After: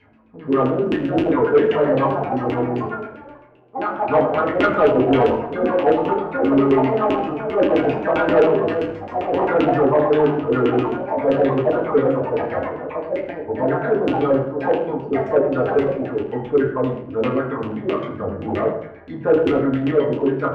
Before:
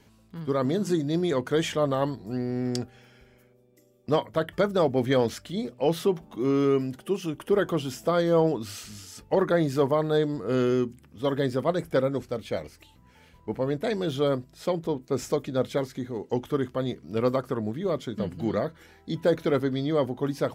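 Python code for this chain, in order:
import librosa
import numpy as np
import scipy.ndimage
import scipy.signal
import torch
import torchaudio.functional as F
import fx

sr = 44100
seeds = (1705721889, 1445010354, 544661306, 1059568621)

y = fx.echo_pitch(x, sr, ms=721, semitones=5, count=3, db_per_echo=-6.0)
y = fx.filter_lfo_lowpass(y, sr, shape='saw_down', hz=7.6, low_hz=300.0, high_hz=2800.0, q=6.2)
y = fx.rev_fdn(y, sr, rt60_s=0.75, lf_ratio=1.2, hf_ratio=0.55, size_ms=66.0, drr_db=-4.0)
y = 10.0 ** (-3.0 / 20.0) * np.tanh(y / 10.0 ** (-3.0 / 20.0))
y = F.gain(torch.from_numpy(y), -4.0).numpy()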